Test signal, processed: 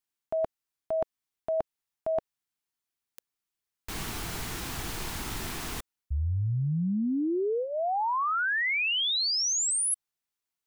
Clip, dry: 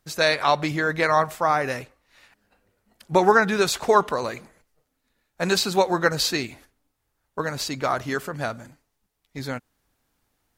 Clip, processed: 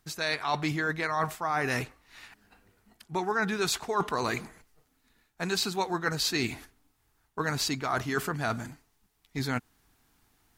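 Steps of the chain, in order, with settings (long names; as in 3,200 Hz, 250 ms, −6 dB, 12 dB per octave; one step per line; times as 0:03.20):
parametric band 550 Hz −13.5 dB 0.25 octaves
reversed playback
downward compressor 8 to 1, threshold −31 dBFS
reversed playback
level +5 dB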